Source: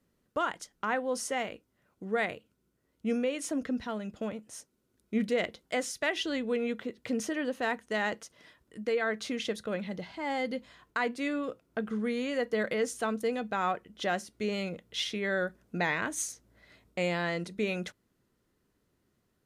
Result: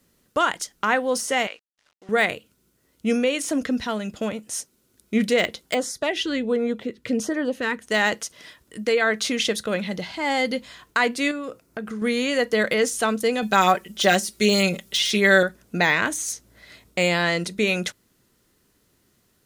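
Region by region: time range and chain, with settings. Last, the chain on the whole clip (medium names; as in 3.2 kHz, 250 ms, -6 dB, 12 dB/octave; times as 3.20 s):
1.47–2.09 s: high-pass 820 Hz + companded quantiser 6-bit + distance through air 99 m
5.74–7.82 s: treble shelf 2.8 kHz -11.5 dB + LFO notch sine 1.4 Hz 680–2900 Hz
11.31–12.02 s: peaking EQ 3.3 kHz -7 dB 0.48 oct + compression 2.5:1, threshold -39 dBFS
13.42–15.43 s: treble shelf 4.2 kHz +9 dB + comb 5.2 ms, depth 84%
whole clip: de-esser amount 90%; treble shelf 2.6 kHz +10 dB; trim +8 dB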